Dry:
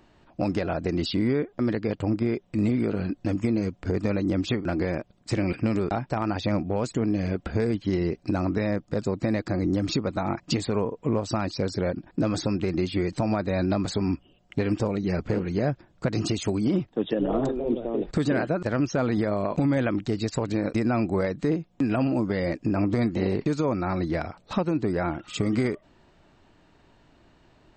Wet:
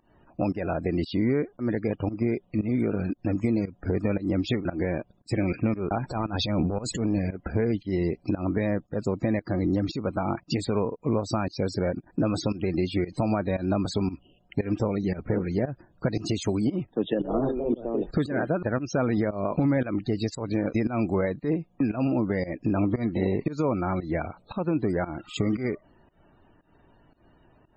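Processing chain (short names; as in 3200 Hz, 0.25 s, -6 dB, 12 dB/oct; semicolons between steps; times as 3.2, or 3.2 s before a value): 5.98–7.19 transient shaper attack -10 dB, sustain +11 dB; loudest bins only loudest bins 64; pump 115 bpm, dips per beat 1, -19 dB, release 0.175 s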